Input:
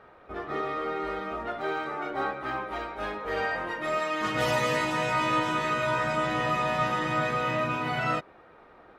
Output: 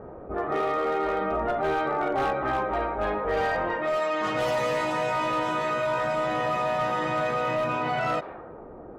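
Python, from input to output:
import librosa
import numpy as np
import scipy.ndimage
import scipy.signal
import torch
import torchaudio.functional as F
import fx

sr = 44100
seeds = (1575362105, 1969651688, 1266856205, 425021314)

y = fx.env_lowpass(x, sr, base_hz=450.0, full_db=-24.0)
y = fx.dynamic_eq(y, sr, hz=650.0, q=0.92, threshold_db=-43.0, ratio=4.0, max_db=8)
y = fx.rider(y, sr, range_db=4, speed_s=2.0)
y = np.clip(10.0 ** (18.0 / 20.0) * y, -1.0, 1.0) / 10.0 ** (18.0 / 20.0)
y = fx.low_shelf(y, sr, hz=180.0, db=9.0, at=(1.21, 3.77))
y = fx.env_flatten(y, sr, amount_pct=50)
y = y * 10.0 ** (-4.0 / 20.0)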